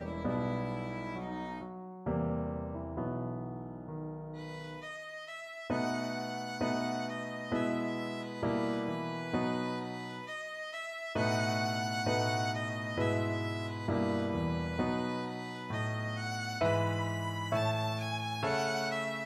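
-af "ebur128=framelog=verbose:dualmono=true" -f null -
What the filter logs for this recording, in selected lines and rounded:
Integrated loudness:
  I:         -32.1 LUFS
  Threshold: -42.1 LUFS
Loudness range:
  LRA:         5.7 LU
  Threshold: -52.2 LUFS
  LRA low:   -35.9 LUFS
  LRA high:  -30.1 LUFS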